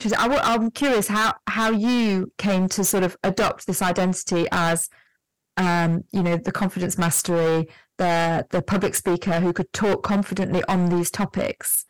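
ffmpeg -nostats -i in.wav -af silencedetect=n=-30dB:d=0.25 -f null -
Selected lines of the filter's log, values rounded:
silence_start: 4.86
silence_end: 5.57 | silence_duration: 0.71
silence_start: 7.64
silence_end: 7.99 | silence_duration: 0.35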